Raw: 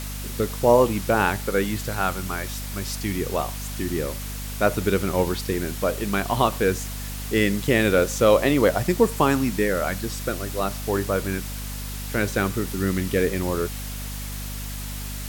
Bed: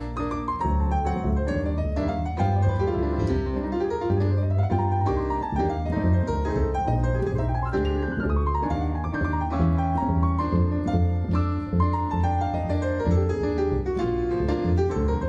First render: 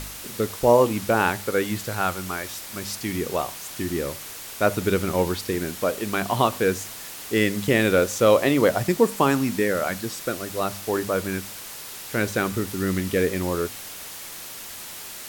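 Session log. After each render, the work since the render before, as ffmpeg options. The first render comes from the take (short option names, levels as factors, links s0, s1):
-af "bandreject=f=50:t=h:w=4,bandreject=f=100:t=h:w=4,bandreject=f=150:t=h:w=4,bandreject=f=200:t=h:w=4,bandreject=f=250:t=h:w=4"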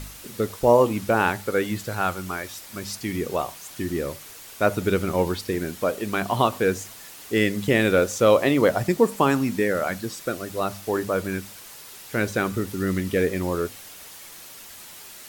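-af "afftdn=nr=6:nf=-38"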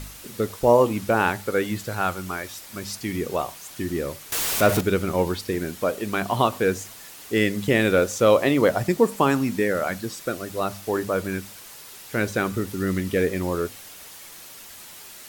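-filter_complex "[0:a]asettb=1/sr,asplit=3[s0][s1][s2];[s0]atrim=end=4.324[s3];[s1]atrim=start=4.32:end=4.81,asetpts=PTS-STARTPTS,afade=t=in:d=0.004:c=qsin,afade=t=out:st=0.486:d=0.004:c=qsin,aeval=exprs='val(0)+0.5*0.1*sgn(val(0))':c=same[s4];[s2]atrim=start=4.806[s5];[s3][s4]acrossfade=d=0.004:c1=hsin:c2=qsin[s6];[s6][s5]acrossfade=d=0.004:c1=qsin:c2=hsin"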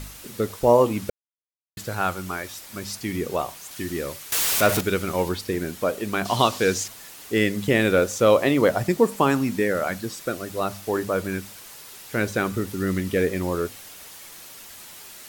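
-filter_complex "[0:a]asettb=1/sr,asplit=3[s0][s1][s2];[s0]atrim=end=3.714[s3];[s1]atrim=start=3.71:end=5.29,asetpts=PTS-STARTPTS,afade=t=in:d=0.004:c=qsin,afade=t=out:st=1.576:d=0.004:c=qsin,tiltshelf=f=970:g=-3[s4];[s2]atrim=start=5.286[s5];[s3][s4]acrossfade=d=0.004:c1=hsin:c2=qsin[s6];[s6][s5]acrossfade=d=0.004:c1=qsin:c2=hsin,asettb=1/sr,asplit=3[s7][s8][s9];[s7]atrim=end=6.254[s10];[s8]atrim=start=6.25:end=6.88,asetpts=PTS-STARTPTS,afade=t=in:d=0.004:c=qsin,afade=t=out:st=0.626:d=0.004:c=qsin,equalizer=f=5100:w=0.74:g=11[s11];[s9]atrim=start=6.876[s12];[s10][s11]acrossfade=d=0.004:c1=hsin:c2=qsin[s13];[s13][s12]acrossfade=d=0.004:c1=qsin:c2=hsin,asplit=3[s14][s15][s16];[s14]atrim=end=1.1,asetpts=PTS-STARTPTS,afade=t=out:st=1.096:d=0.004:c=hsin[s17];[s15]atrim=start=1.1:end=1.77,asetpts=PTS-STARTPTS,volume=0[s18];[s16]atrim=start=1.77,asetpts=PTS-STARTPTS,afade=t=in:d=0.004:c=hsin[s19];[s17][s18][s19]concat=n=3:v=0:a=1"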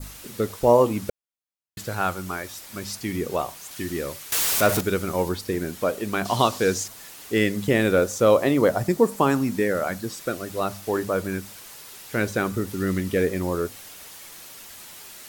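-af "adynamicequalizer=threshold=0.01:dfrequency=2700:dqfactor=1:tfrequency=2700:tqfactor=1:attack=5:release=100:ratio=0.375:range=3:mode=cutabove:tftype=bell"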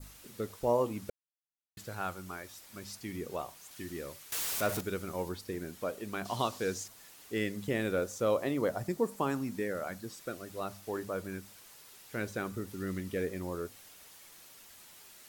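-af "volume=0.251"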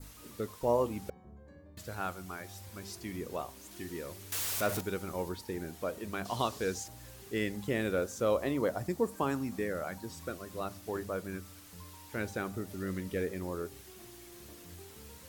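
-filter_complex "[1:a]volume=0.0335[s0];[0:a][s0]amix=inputs=2:normalize=0"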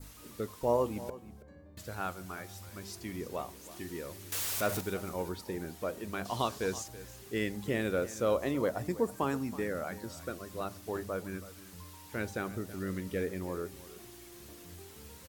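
-af "aecho=1:1:326:0.15"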